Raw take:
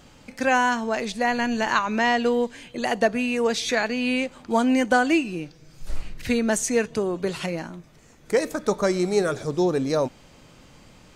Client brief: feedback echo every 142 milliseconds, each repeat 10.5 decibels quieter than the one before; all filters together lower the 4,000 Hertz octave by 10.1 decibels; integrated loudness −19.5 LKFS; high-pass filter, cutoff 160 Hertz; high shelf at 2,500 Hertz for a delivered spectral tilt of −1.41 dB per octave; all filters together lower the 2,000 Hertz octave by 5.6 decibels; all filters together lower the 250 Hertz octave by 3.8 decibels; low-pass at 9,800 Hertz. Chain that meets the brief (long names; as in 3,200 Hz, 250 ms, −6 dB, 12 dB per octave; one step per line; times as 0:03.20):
high-pass filter 160 Hz
low-pass filter 9,800 Hz
parametric band 250 Hz −3.5 dB
parametric band 2,000 Hz −3.5 dB
high-shelf EQ 2,500 Hz −5.5 dB
parametric band 4,000 Hz −7.5 dB
repeating echo 142 ms, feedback 30%, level −10.5 dB
level +6.5 dB